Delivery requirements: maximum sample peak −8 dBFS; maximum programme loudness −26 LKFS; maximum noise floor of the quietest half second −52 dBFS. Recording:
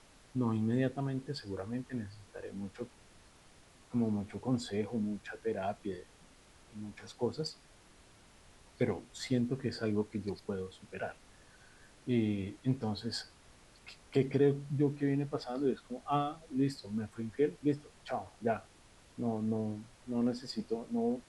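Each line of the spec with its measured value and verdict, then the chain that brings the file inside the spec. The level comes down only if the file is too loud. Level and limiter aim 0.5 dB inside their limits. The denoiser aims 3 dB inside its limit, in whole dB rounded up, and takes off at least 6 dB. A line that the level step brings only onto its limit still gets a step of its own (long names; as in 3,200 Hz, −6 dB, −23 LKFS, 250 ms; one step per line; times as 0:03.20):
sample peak −17.0 dBFS: in spec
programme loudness −36.0 LKFS: in spec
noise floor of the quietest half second −60 dBFS: in spec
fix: no processing needed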